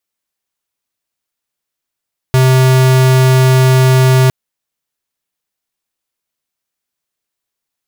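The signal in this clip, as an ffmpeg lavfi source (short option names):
-f lavfi -i "aevalsrc='0.398*(2*lt(mod(130*t,1),0.5)-1)':d=1.96:s=44100"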